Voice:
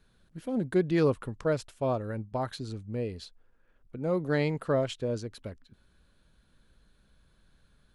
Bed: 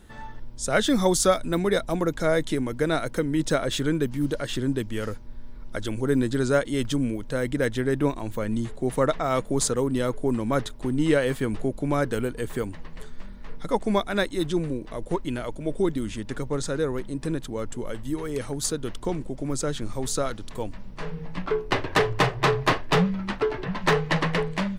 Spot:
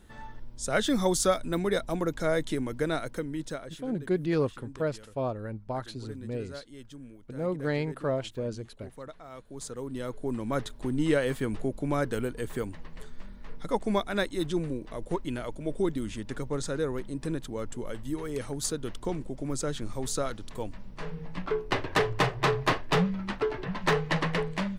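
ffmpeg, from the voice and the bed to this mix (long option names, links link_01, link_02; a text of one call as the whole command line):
ffmpeg -i stem1.wav -i stem2.wav -filter_complex "[0:a]adelay=3350,volume=-2dB[link_01];[1:a]volume=12.5dB,afade=type=out:start_time=2.82:duration=0.97:silence=0.149624,afade=type=in:start_time=9.46:duration=1.35:silence=0.141254[link_02];[link_01][link_02]amix=inputs=2:normalize=0" out.wav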